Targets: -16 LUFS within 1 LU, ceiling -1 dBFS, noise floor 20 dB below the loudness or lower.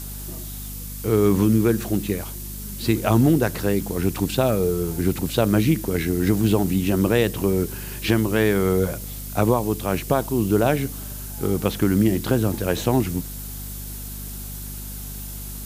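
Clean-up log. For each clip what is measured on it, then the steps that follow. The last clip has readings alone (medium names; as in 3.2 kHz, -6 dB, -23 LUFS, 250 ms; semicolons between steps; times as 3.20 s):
hum 50 Hz; highest harmonic 250 Hz; hum level -33 dBFS; noise floor -33 dBFS; noise floor target -42 dBFS; loudness -21.5 LUFS; peak level -5.0 dBFS; loudness target -16.0 LUFS
-> de-hum 50 Hz, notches 5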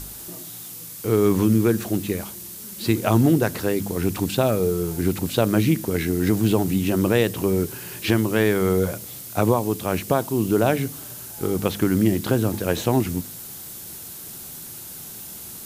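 hum not found; noise floor -38 dBFS; noise floor target -42 dBFS
-> noise reduction 6 dB, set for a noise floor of -38 dBFS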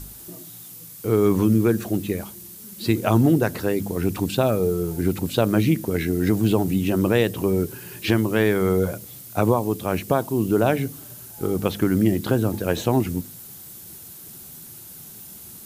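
noise floor -42 dBFS; loudness -22.0 LUFS; peak level -5.0 dBFS; loudness target -16.0 LUFS
-> trim +6 dB; peak limiter -1 dBFS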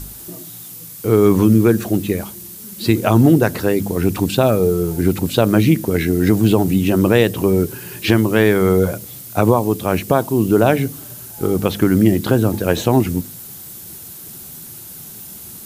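loudness -16.0 LUFS; peak level -1.0 dBFS; noise floor -36 dBFS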